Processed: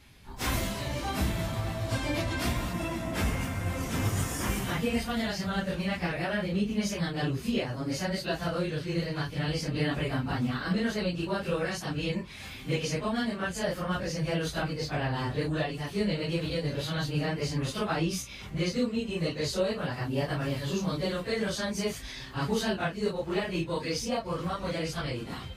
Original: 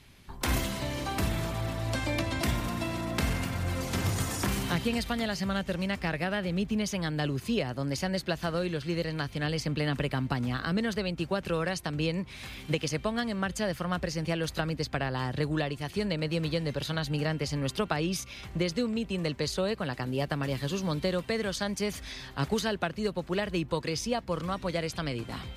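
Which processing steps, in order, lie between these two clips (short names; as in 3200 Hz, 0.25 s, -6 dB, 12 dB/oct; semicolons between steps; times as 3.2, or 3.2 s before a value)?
phase scrambler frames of 0.1 s; 2.73–5.11 bell 4200 Hz -7 dB 0.39 oct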